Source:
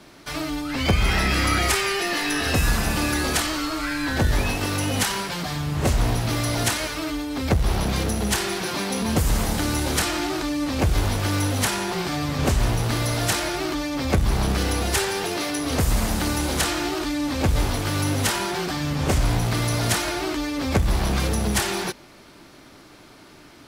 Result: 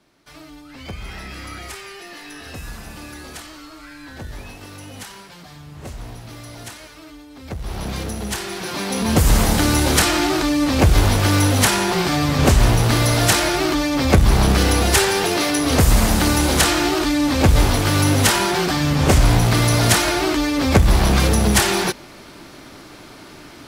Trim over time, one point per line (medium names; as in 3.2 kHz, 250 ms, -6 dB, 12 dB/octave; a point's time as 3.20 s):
7.39 s -13 dB
7.87 s -3 dB
8.46 s -3 dB
9.29 s +7 dB